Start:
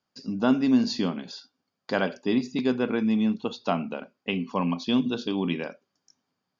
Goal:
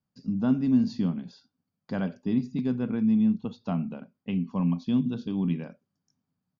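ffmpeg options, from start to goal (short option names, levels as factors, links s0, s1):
-af "firequalizer=gain_entry='entry(160,0);entry(350,-15);entry(2800,-20)':delay=0.05:min_phase=1,volume=2"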